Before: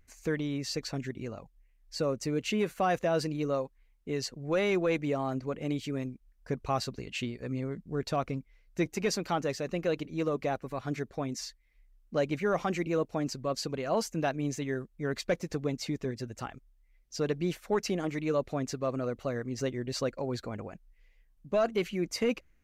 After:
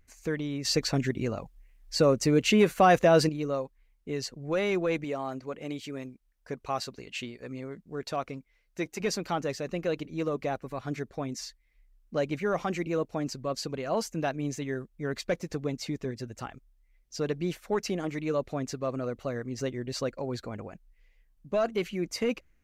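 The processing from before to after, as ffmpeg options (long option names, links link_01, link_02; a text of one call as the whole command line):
ffmpeg -i in.wav -filter_complex "[0:a]asettb=1/sr,asplit=3[link_01][link_02][link_03];[link_01]atrim=end=5.044[link_04];[link_02]atrim=start=5.04:end=9,asetpts=PTS-STARTPTS,afade=type=in:duration=0.004:curve=qsin,afade=type=out:start_time=3.956:duration=0.004:curve=qsin,lowshelf=frequency=220:gain=-10.5[link_05];[link_03]atrim=start=8.996[link_06];[link_04][link_05]acrossfade=duration=0.004:curve1=hsin:curve2=qsin[link_07];[link_07][link_06]acrossfade=duration=0.004:curve1=qsin:curve2=hsin,asplit=3[link_08][link_09][link_10];[link_08]atrim=end=0.652[link_11];[link_09]atrim=start=0.648:end=3.292,asetpts=PTS-STARTPTS,volume=8dB[link_12];[link_10]atrim=start=3.288[link_13];[link_11][link_12]acrossfade=duration=0.004:curve1=hsin:curve2=hsin[link_14];[link_14][link_13]acrossfade=duration=0.004:curve1=hsin:curve2=hsin" out.wav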